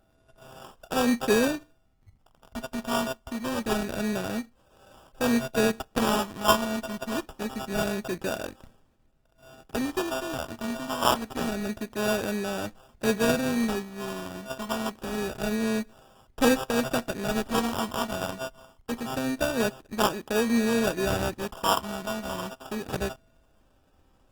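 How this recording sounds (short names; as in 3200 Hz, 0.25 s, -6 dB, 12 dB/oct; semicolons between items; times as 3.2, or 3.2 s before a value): a buzz of ramps at a fixed pitch in blocks of 16 samples; phasing stages 6, 0.26 Hz, lowest notch 450–2400 Hz; aliases and images of a low sample rate 2100 Hz, jitter 0%; Opus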